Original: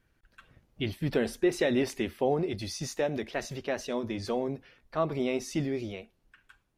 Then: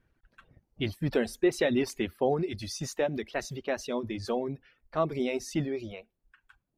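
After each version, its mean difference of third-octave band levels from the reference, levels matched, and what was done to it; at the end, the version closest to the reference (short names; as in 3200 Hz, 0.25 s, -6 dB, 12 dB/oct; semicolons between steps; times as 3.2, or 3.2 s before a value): 3.5 dB: reverb removal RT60 0.82 s; mismatched tape noise reduction decoder only; gain +1 dB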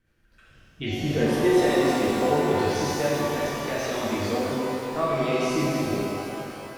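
11.5 dB: rotary speaker horn 8 Hz, later 0.8 Hz, at 2.36; shimmer reverb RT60 3 s, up +12 st, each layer -8 dB, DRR -7.5 dB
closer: first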